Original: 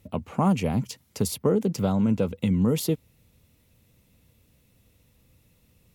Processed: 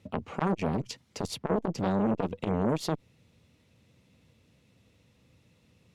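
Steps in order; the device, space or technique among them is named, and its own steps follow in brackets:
valve radio (band-pass filter 98–5,800 Hz; tube saturation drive 20 dB, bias 0.55; saturating transformer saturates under 650 Hz)
level +3.5 dB

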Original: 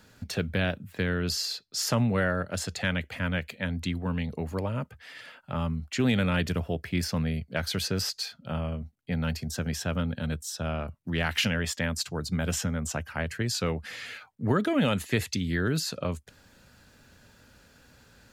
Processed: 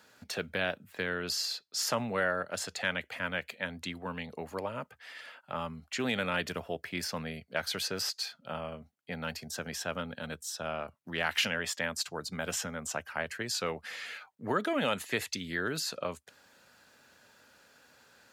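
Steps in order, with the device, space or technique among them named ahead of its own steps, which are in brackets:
filter by subtraction (in parallel: low-pass filter 780 Hz 12 dB per octave + polarity inversion)
on the sum: level −2.5 dB

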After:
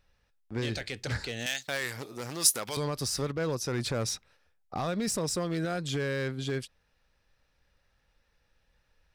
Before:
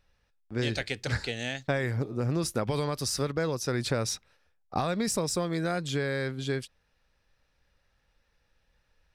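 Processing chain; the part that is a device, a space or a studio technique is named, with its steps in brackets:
limiter into clipper (brickwall limiter −21 dBFS, peak gain reduction 6 dB; hard clipping −25 dBFS, distortion −19 dB)
0:01.46–0:02.77: spectral tilt +4.5 dB per octave

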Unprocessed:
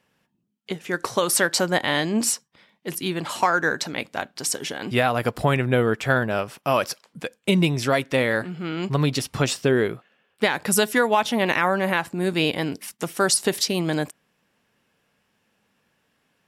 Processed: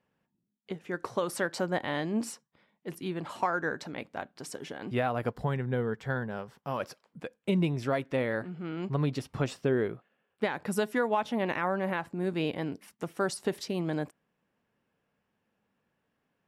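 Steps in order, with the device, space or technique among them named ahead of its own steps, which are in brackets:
0:05.33–0:06.80: thirty-one-band graphic EQ 100 Hz −5 dB, 315 Hz −11 dB, 630 Hz −10 dB, 1,250 Hz −6 dB, 2,500 Hz −10 dB, 10,000 Hz −6 dB
through cloth (high-shelf EQ 2,500 Hz −13.5 dB)
level −7 dB

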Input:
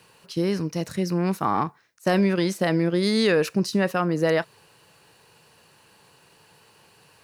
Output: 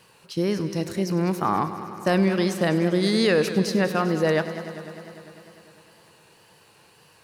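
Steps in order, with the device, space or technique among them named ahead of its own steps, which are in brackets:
multi-head tape echo (echo machine with several playback heads 100 ms, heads first and second, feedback 73%, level −16 dB; tape wow and flutter)

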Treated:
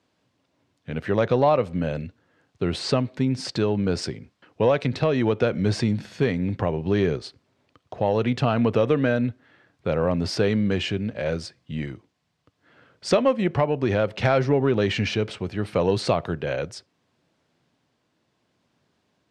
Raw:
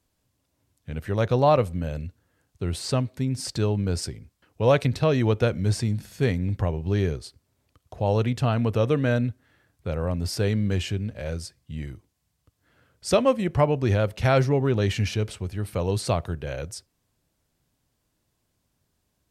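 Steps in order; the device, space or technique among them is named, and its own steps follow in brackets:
AM radio (band-pass filter 170–4,000 Hz; downward compressor 4 to 1, threshold −24 dBFS, peak gain reduction 9 dB; soft clipping −14 dBFS, distortion −26 dB; amplitude tremolo 0.69 Hz, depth 19%)
level +8.5 dB

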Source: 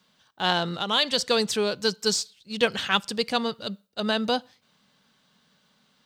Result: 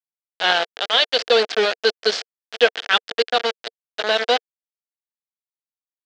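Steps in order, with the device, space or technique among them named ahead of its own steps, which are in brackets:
hand-held game console (bit reduction 4 bits; loudspeaker in its box 430–4,800 Hz, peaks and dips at 460 Hz +7 dB, 690 Hz +5 dB, 1,000 Hz −6 dB, 1,600 Hz +5 dB, 3,200 Hz +4 dB)
level +3.5 dB

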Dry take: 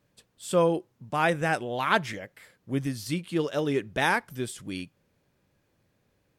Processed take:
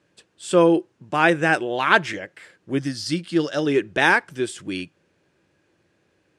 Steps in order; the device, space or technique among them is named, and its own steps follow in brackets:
car door speaker (loudspeaker in its box 92–9,200 Hz, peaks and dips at 120 Hz −6 dB, 230 Hz −5 dB, 340 Hz +8 dB, 1,600 Hz +5 dB, 2,700 Hz +4 dB)
0:02.79–0:03.66: thirty-one-band graphic EQ 400 Hz −11 dB, 1,000 Hz −6 dB, 2,500 Hz −7 dB, 5,000 Hz +9 dB
level +5 dB

